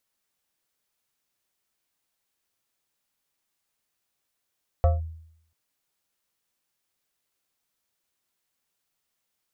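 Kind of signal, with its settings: FM tone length 0.69 s, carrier 80.7 Hz, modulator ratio 7.59, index 0.72, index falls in 0.17 s linear, decay 0.70 s, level -13.5 dB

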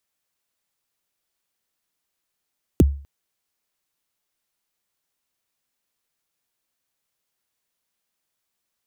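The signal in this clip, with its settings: kick drum length 0.25 s, from 440 Hz, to 70 Hz, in 25 ms, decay 0.41 s, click on, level -7 dB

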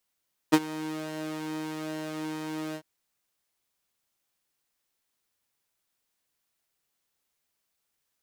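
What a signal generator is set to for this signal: synth patch with pulse-width modulation D#4, sub -1 dB, filter highpass, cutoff 230 Hz, Q 1.1, filter envelope 0.5 oct, attack 18 ms, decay 0.05 s, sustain -19 dB, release 0.07 s, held 2.23 s, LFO 1.2 Hz, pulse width 41%, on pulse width 15%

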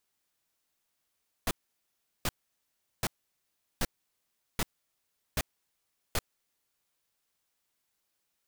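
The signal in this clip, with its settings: noise bursts pink, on 0.04 s, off 0.74 s, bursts 7, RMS -28.5 dBFS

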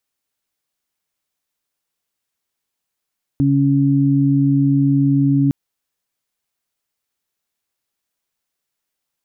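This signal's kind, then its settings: steady additive tone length 2.11 s, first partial 139 Hz, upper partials 1 dB, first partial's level -15 dB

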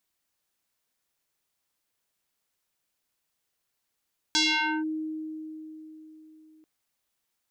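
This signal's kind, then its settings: FM tone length 2.29 s, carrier 313 Hz, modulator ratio 3.92, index 4.8, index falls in 0.49 s linear, decay 3.95 s, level -19.5 dB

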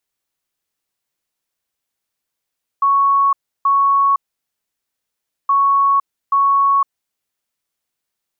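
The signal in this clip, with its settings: beep pattern sine 1.11 kHz, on 0.51 s, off 0.32 s, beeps 2, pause 1.33 s, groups 2, -10.5 dBFS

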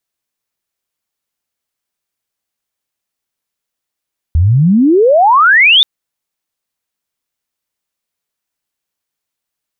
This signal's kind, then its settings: sweep logarithmic 75 Hz -> 3.7 kHz -6 dBFS -> -3.5 dBFS 1.48 s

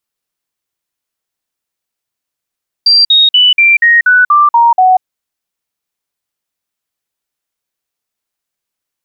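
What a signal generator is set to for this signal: stepped sine 4.72 kHz down, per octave 3, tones 9, 0.19 s, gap 0.05 s -3.5 dBFS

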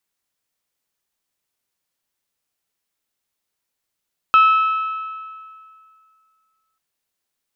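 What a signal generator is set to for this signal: metal hit bell, length 2.44 s, lowest mode 1.3 kHz, decay 2.24 s, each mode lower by 10.5 dB, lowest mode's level -7.5 dB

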